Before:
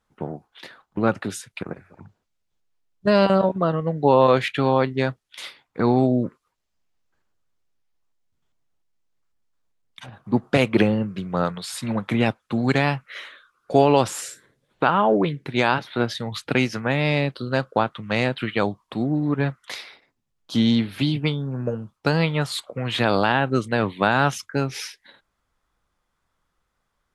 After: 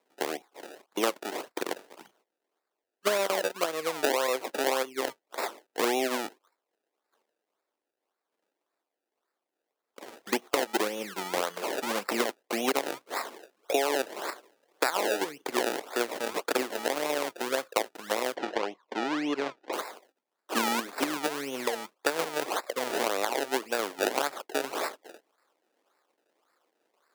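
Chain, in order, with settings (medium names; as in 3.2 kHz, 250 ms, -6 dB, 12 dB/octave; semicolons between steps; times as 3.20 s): in parallel at +2 dB: level held to a coarse grid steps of 19 dB; on the sum: decimation with a swept rate 28×, swing 100% 1.8 Hz; high-pass 340 Hz 24 dB/octave; compression 5:1, threshold -25 dBFS, peak gain reduction 17.5 dB; 18.36–19.73 s: distance through air 150 m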